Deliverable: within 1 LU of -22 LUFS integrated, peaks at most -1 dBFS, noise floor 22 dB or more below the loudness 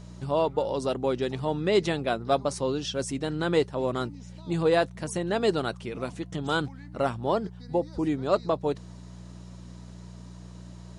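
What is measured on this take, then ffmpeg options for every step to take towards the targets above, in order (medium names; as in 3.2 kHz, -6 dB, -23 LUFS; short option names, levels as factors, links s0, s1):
hum 60 Hz; highest harmonic 180 Hz; hum level -41 dBFS; loudness -28.0 LUFS; peak level -10.0 dBFS; loudness target -22.0 LUFS
-> -af "bandreject=f=60:t=h:w=4,bandreject=f=120:t=h:w=4,bandreject=f=180:t=h:w=4"
-af "volume=2"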